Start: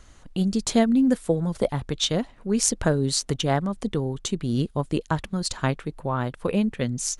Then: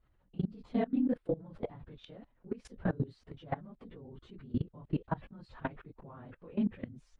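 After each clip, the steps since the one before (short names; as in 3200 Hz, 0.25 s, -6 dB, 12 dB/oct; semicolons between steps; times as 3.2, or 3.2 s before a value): phase scrambler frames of 50 ms; level quantiser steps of 21 dB; air absorption 440 m; gain -6.5 dB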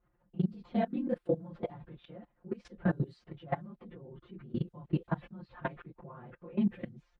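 HPF 85 Hz 6 dB/oct; low-pass opened by the level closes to 1700 Hz, open at -32 dBFS; comb 5.7 ms, depth 85%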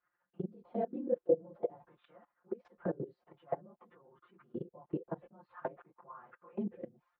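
auto-wah 460–1600 Hz, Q 2.6, down, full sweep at -33 dBFS; gain +4 dB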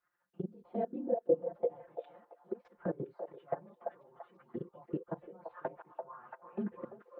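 delay with a stepping band-pass 0.339 s, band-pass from 700 Hz, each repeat 0.7 oct, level -3 dB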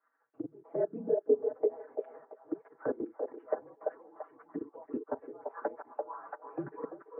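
in parallel at +1 dB: limiter -28.5 dBFS, peak gain reduction 11.5 dB; on the sum: mistuned SSB -64 Hz 350–2000 Hz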